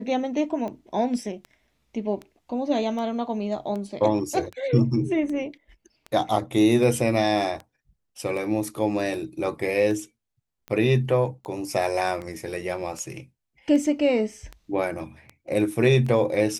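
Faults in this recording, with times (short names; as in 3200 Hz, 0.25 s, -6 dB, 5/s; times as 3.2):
tick 78 rpm -23 dBFS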